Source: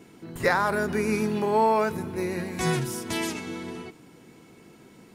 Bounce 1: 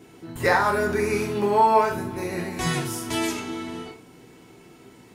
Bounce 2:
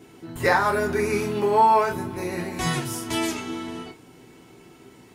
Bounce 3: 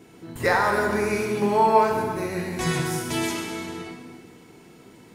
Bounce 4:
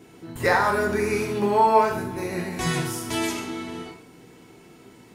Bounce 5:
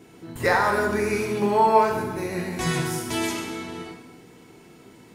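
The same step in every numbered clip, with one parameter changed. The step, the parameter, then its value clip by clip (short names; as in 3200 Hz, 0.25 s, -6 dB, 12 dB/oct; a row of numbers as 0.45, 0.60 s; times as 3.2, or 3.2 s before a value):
non-linear reverb, gate: 140, 80, 540, 220, 360 ms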